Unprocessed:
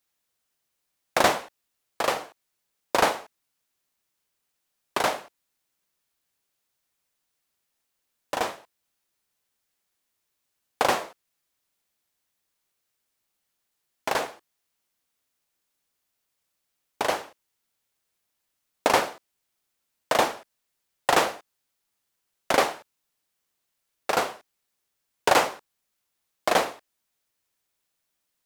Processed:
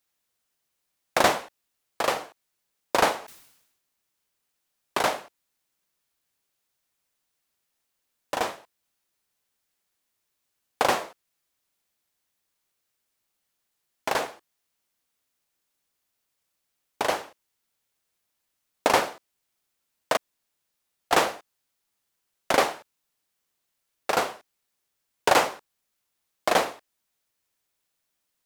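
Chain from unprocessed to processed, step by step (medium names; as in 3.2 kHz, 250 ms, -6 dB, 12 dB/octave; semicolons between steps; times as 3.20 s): 3.19–5.07 s: decay stretcher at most 62 dB/s; 20.17–21.11 s: room tone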